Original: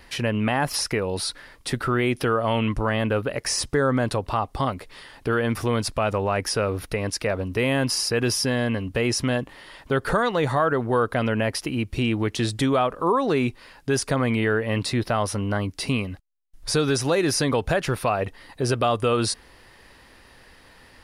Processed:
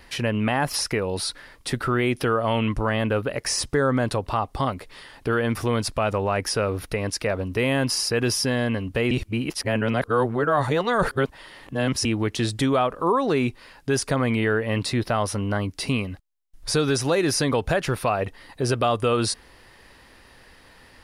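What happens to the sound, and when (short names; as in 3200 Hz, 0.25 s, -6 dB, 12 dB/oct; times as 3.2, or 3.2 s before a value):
9.11–12.05 reverse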